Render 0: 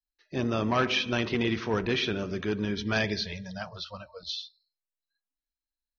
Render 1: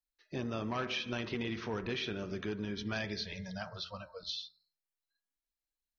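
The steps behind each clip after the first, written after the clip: de-hum 87.69 Hz, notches 25; compressor 2.5:1, threshold -34 dBFS, peak gain reduction 8.5 dB; gain -2.5 dB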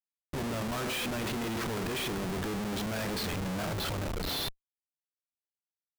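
transient shaper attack -4 dB, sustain +12 dB; Schmitt trigger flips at -42 dBFS; gain +5.5 dB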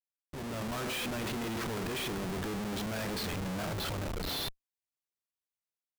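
AGC gain up to 7 dB; gain -9 dB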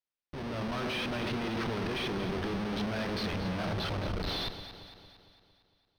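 polynomial smoothing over 15 samples; echo with dull and thin repeats by turns 0.114 s, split 970 Hz, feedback 73%, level -8.5 dB; gain +1.5 dB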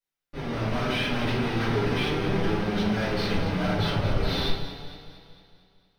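flange 0.35 Hz, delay 5.2 ms, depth 2.7 ms, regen +67%; shoebox room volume 80 m³, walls mixed, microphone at 2.4 m

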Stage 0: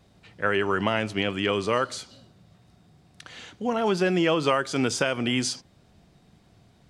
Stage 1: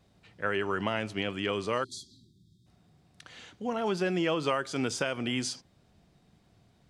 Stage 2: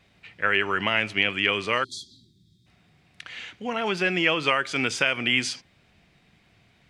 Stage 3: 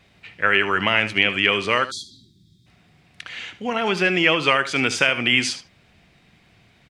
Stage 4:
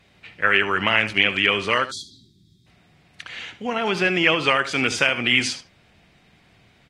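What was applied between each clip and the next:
spectral delete 1.84–2.66, 390–3200 Hz; gain -6 dB
bell 2300 Hz +14.5 dB 1.3 oct; gain +1 dB
echo 74 ms -14 dB; gain +4.5 dB
gain -1 dB; AAC 48 kbps 48000 Hz

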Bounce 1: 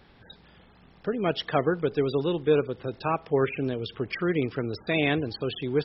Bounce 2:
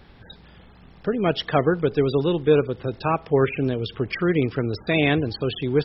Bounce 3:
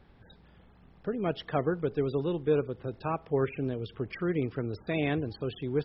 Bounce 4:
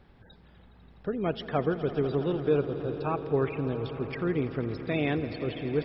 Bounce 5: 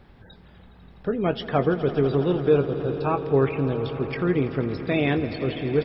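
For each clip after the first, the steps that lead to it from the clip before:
low shelf 120 Hz +7 dB; gain +4 dB
high shelf 2700 Hz -9.5 dB; gain -8.5 dB
swelling echo 83 ms, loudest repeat 5, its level -17 dB; gain +1 dB
doubler 22 ms -11 dB; gain +5.5 dB

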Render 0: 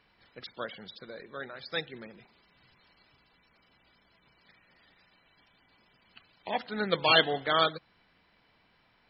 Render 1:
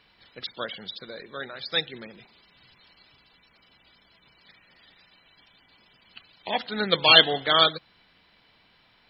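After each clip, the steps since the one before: bell 3600 Hz +7.5 dB 0.93 oct; gain +3.5 dB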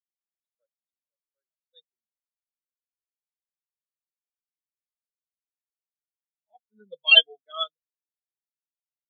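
spectral expander 4:1; gain -1 dB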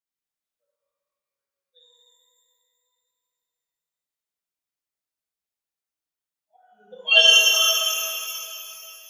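shimmer reverb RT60 2.7 s, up +12 st, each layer -8 dB, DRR -7 dB; gain -3 dB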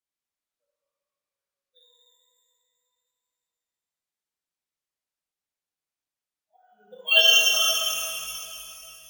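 careless resampling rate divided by 2×, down none, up hold; gain -3 dB

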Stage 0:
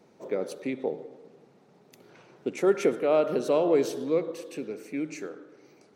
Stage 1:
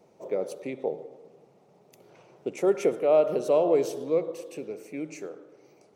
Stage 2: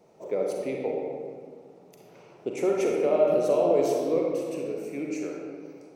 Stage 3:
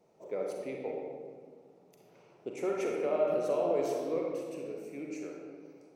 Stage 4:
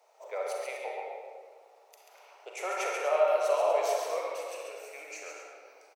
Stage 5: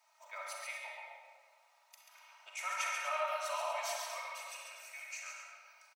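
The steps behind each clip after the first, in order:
fifteen-band EQ 250 Hz -6 dB, 630 Hz +4 dB, 1600 Hz -8 dB, 4000 Hz -5 dB
limiter -18 dBFS, peak gain reduction 6.5 dB; reverb RT60 1.8 s, pre-delay 36 ms, DRR -1 dB
dynamic EQ 1500 Hz, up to +6 dB, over -40 dBFS, Q 0.94; gain -8.5 dB
inverse Chebyshev high-pass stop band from 250 Hz, stop band 50 dB; tapped delay 0.137/0.243 s -5/-11.5 dB; gain +8.5 dB
HPF 1000 Hz 24 dB/oct; comb 3.2 ms, depth 98%; gain -3.5 dB

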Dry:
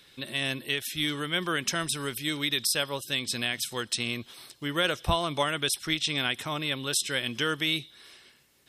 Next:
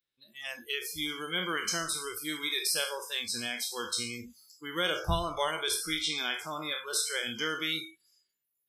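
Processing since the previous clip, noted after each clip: spectral trails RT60 0.56 s; Schroeder reverb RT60 0.58 s, combs from 29 ms, DRR 11 dB; spectral noise reduction 30 dB; gain -5 dB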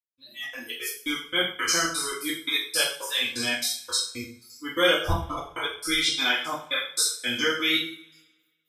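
step gate "..xxx.xx.x..x..x" 170 bpm -60 dB; two-slope reverb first 0.44 s, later 1.5 s, from -25 dB, DRR -9 dB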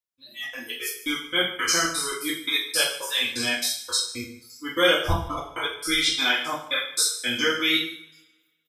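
echo 0.148 s -17 dB; gain +1.5 dB

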